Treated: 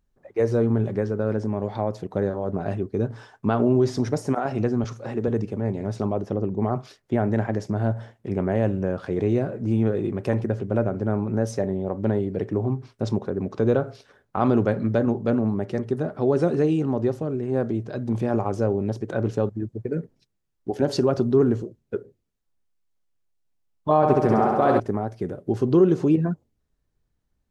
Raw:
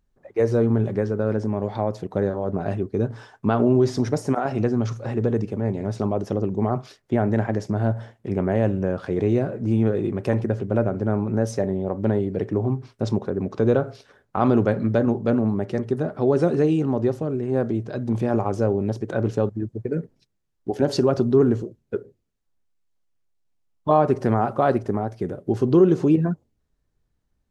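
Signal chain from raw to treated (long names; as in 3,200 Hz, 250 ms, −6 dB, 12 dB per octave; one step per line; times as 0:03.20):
0:04.84–0:05.28: high-pass filter 150 Hz
0:06.20–0:06.62: high-shelf EQ 3,400 Hz −10 dB
0:23.96–0:24.80: flutter between parallel walls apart 11.6 metres, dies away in 1.4 s
level −1.5 dB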